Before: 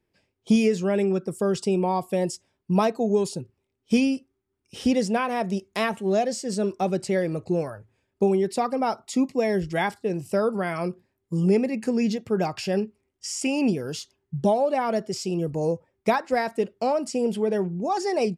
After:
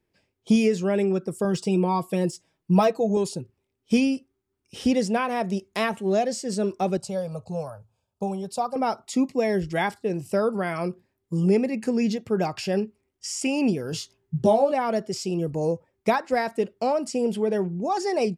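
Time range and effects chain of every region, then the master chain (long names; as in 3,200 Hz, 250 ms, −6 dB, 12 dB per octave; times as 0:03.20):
0:01.44–0:03.17: comb filter 6.2 ms, depth 61% + de-essing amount 70%
0:06.97–0:08.76: high-pass filter 45 Hz + phaser with its sweep stopped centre 800 Hz, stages 4
0:13.91–0:14.72: parametric band 120 Hz +5.5 dB 0.82 octaves + double-tracking delay 18 ms −3 dB
whole clip: no processing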